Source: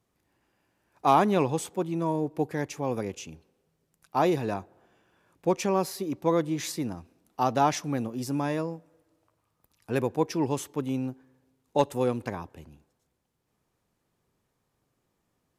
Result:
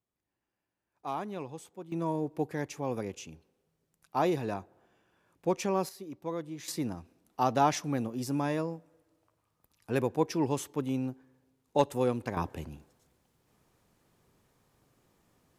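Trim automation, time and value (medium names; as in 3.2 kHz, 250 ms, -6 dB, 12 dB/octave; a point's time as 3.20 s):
-15 dB
from 1.92 s -4 dB
from 5.89 s -11.5 dB
from 6.68 s -2 dB
from 12.37 s +7 dB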